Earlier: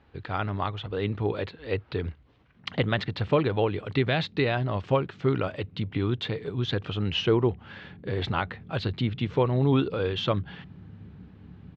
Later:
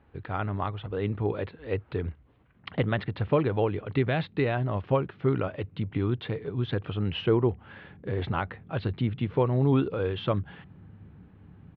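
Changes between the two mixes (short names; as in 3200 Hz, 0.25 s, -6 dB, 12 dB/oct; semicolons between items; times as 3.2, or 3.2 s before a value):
background: send -6.5 dB; master: add air absorption 370 m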